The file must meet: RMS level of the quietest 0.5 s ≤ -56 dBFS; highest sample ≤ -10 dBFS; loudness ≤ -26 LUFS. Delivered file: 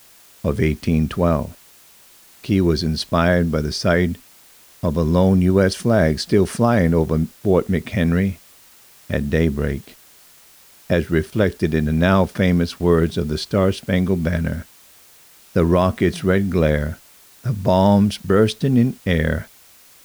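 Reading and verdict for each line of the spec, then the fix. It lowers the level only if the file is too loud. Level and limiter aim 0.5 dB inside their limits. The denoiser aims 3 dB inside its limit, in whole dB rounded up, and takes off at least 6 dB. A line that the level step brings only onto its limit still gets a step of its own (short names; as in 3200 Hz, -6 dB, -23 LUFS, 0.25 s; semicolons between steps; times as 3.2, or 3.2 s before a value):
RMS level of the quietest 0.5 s -49 dBFS: fail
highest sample -4.0 dBFS: fail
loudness -19.0 LUFS: fail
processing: gain -7.5 dB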